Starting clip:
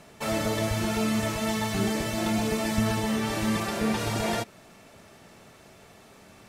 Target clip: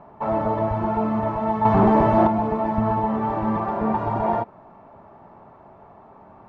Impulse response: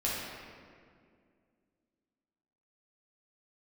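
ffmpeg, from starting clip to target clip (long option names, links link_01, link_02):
-filter_complex "[0:a]asettb=1/sr,asplit=3[link_01][link_02][link_03];[link_01]atrim=end=1.654[link_04];[link_02]atrim=start=1.65:end=2.27,asetpts=PTS-STARTPTS,afade=type=in:duration=0.004:curve=qsin,afade=type=out:start_time=0.616:duration=0.004:curve=qsin,aeval=exprs='0.188*sin(PI/2*2*val(0)/0.188)':channel_layout=same[link_05];[link_03]atrim=start=2.266[link_06];[link_04][link_05]acrossfade=duration=0.004:curve1=hsin:curve2=qsin[link_07];[link_07][link_06]acrossfade=duration=0.004:curve1=qsin:curve2=hsin,lowpass=frequency=940:width_type=q:width=3.5,bandreject=frequency=480:width=12,volume=2dB"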